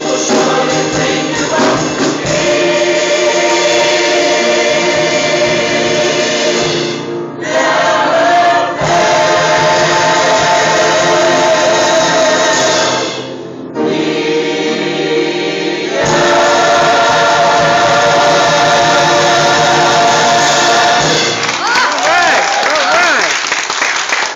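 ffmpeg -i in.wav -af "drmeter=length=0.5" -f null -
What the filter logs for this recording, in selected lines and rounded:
Channel 1: DR: 2.9
Overall DR: 2.9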